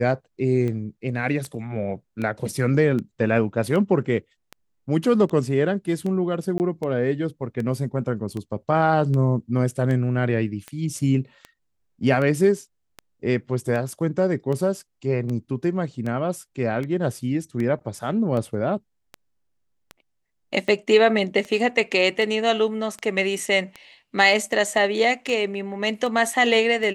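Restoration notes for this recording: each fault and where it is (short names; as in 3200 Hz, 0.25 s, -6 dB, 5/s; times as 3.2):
tick 78 rpm -19 dBFS
6.58–6.6 gap 19 ms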